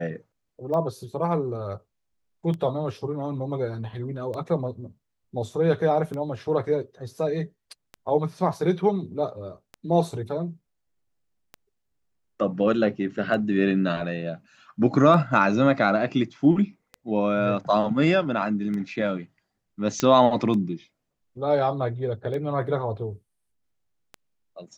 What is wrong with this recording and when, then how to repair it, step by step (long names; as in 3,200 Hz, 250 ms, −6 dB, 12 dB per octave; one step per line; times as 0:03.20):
scratch tick 33 1/3 rpm −22 dBFS
0:20.00: click −9 dBFS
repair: click removal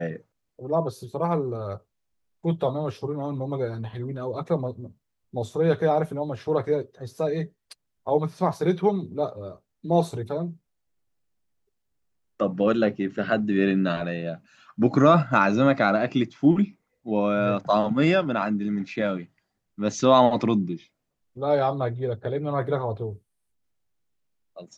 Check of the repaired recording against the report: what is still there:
none of them is left